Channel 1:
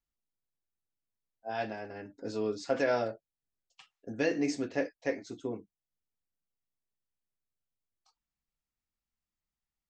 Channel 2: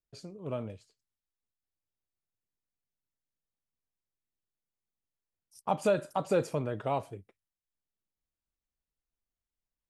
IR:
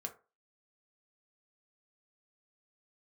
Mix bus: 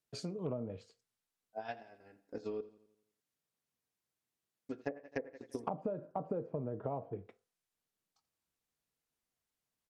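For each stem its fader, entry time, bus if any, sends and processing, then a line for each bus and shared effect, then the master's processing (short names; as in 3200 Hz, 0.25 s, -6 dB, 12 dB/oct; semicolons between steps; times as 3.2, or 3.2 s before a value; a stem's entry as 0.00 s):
-8.5 dB, 0.10 s, muted 2.61–4.69, send -5 dB, echo send -15.5 dB, transient shaper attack +10 dB, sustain -5 dB; wow and flutter 39 cents; upward expander 1.5:1, over -39 dBFS
+2.0 dB, 0.00 s, send -3.5 dB, no echo send, HPF 110 Hz 12 dB/oct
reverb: on, RT60 0.35 s, pre-delay 3 ms
echo: feedback echo 85 ms, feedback 50%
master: treble ducked by the level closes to 670 Hz, closed at -26.5 dBFS; compressor 16:1, threshold -34 dBFS, peak gain reduction 17 dB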